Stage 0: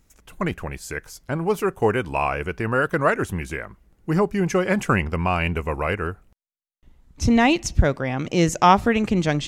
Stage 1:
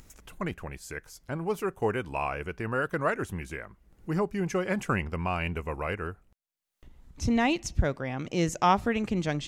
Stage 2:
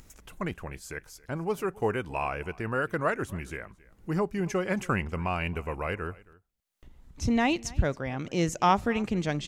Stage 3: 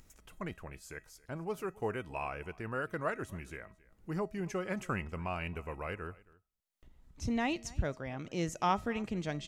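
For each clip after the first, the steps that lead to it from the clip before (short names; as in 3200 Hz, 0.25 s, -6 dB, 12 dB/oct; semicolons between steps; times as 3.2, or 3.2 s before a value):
upward compressor, threshold -33 dBFS; gain -8 dB
echo 0.272 s -22.5 dB
resonator 640 Hz, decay 0.38 s, mix 60%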